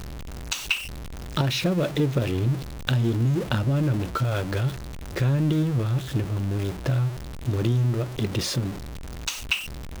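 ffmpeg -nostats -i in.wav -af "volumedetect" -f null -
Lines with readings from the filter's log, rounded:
mean_volume: -25.2 dB
max_volume: -7.0 dB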